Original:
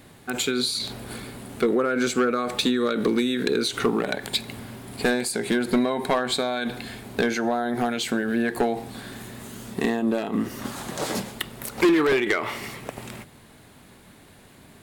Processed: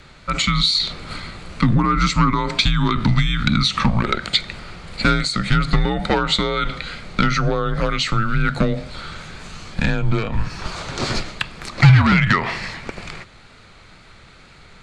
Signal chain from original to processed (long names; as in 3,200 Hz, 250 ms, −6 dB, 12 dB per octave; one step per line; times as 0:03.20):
loudspeaker in its box 180–7,300 Hz, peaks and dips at 200 Hz +7 dB, 340 Hz +6 dB, 1,500 Hz +7 dB, 2,500 Hz +8 dB, 4,600 Hz +9 dB
tape wow and flutter 28 cents
frequency shifter −210 Hz
level +3 dB